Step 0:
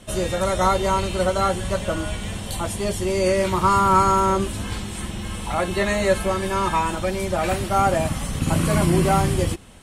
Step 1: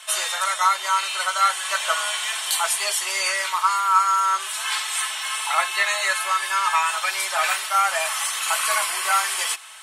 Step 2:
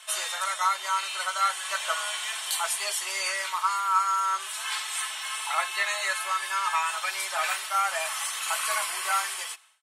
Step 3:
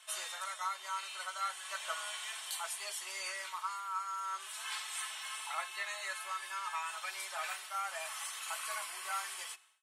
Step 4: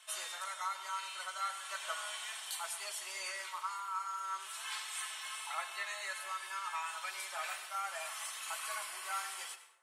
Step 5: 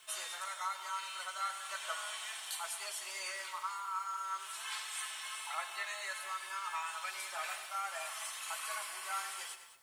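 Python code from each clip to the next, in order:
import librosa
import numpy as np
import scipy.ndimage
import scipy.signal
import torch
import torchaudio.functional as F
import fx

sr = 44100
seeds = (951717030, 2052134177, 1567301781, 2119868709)

y1 = scipy.signal.sosfilt(scipy.signal.butter(4, 1000.0, 'highpass', fs=sr, output='sos'), x)
y1 = y1 + 0.45 * np.pad(y1, (int(4.6 * sr / 1000.0), 0))[:len(y1)]
y1 = fx.rider(y1, sr, range_db=5, speed_s=0.5)
y1 = y1 * librosa.db_to_amplitude(5.0)
y2 = fx.fade_out_tail(y1, sr, length_s=0.62)
y2 = y2 * librosa.db_to_amplitude(-6.0)
y3 = fx.rider(y2, sr, range_db=4, speed_s=0.5)
y3 = fx.comb_fb(y3, sr, f0_hz=370.0, decay_s=0.62, harmonics='all', damping=0.0, mix_pct=40)
y3 = y3 * librosa.db_to_amplitude(-7.5)
y4 = fx.rev_plate(y3, sr, seeds[0], rt60_s=0.93, hf_ratio=0.5, predelay_ms=75, drr_db=10.5)
y4 = y4 * librosa.db_to_amplitude(-1.0)
y5 = fx.dmg_noise_colour(y4, sr, seeds[1], colour='white', level_db=-70.0)
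y5 = y5 + 10.0 ** (-14.5 / 20.0) * np.pad(y5, (int(207 * sr / 1000.0), 0))[:len(y5)]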